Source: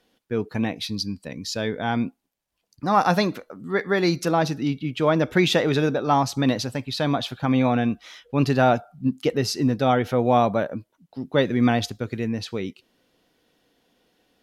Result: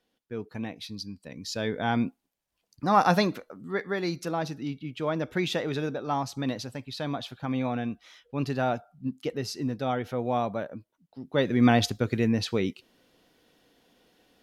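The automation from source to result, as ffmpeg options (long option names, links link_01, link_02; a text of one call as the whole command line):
ffmpeg -i in.wav -af "volume=9dB,afade=type=in:start_time=1.18:duration=0.64:silence=0.398107,afade=type=out:start_time=3.13:duration=0.88:silence=0.446684,afade=type=in:start_time=11.23:duration=0.67:silence=0.281838" out.wav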